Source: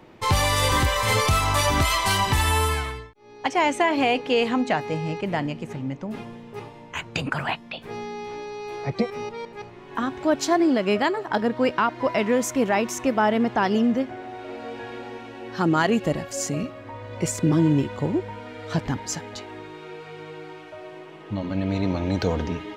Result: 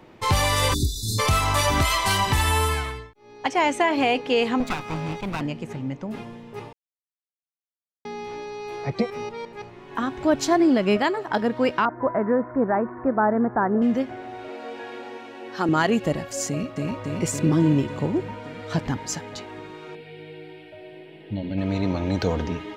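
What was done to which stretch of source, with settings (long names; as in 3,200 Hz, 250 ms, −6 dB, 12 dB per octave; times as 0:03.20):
0:00.74–0:01.19: time-frequency box erased 420–3,500 Hz
0:04.60–0:05.41: lower of the sound and its delayed copy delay 0.85 ms
0:06.73–0:08.05: silence
0:10.18–0:10.97: low-shelf EQ 130 Hz +11.5 dB
0:11.85–0:13.82: Butterworth low-pass 1,700 Hz 48 dB per octave
0:14.48–0:15.69: high-pass filter 250 Hz
0:16.48–0:16.88: delay throw 280 ms, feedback 75%, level −0.5 dB
0:19.95–0:21.58: phaser with its sweep stopped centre 2,800 Hz, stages 4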